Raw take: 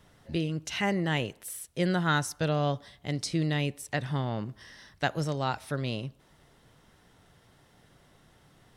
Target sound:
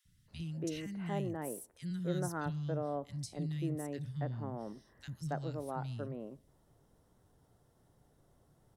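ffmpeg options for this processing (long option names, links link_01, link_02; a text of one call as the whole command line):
ffmpeg -i in.wav -filter_complex "[0:a]asetnsamples=nb_out_samples=441:pad=0,asendcmd='0.82 equalizer g -14',equalizer=frequency=2800:width_type=o:width=2.4:gain=-7.5,acrossover=split=200|2000[link_01][link_02][link_03];[link_01]adelay=50[link_04];[link_02]adelay=280[link_05];[link_04][link_05][link_03]amix=inputs=3:normalize=0,volume=-5dB" out.wav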